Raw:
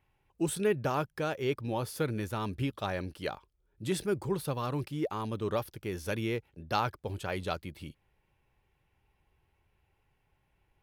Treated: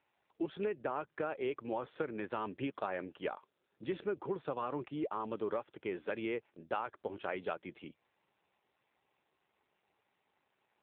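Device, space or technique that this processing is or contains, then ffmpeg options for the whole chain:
voicemail: -af "highpass=320,lowpass=2600,acompressor=threshold=0.02:ratio=10,volume=1.33" -ar 8000 -c:a libopencore_amrnb -b:a 7400

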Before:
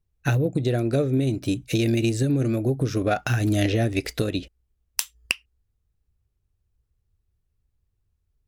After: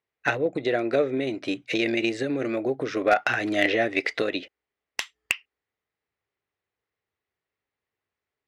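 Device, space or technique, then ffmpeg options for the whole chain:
megaphone: -af "highpass=470,lowpass=3200,equalizer=f=2000:t=o:w=0.29:g=8,asoftclip=type=hard:threshold=0.178,volume=1.78"

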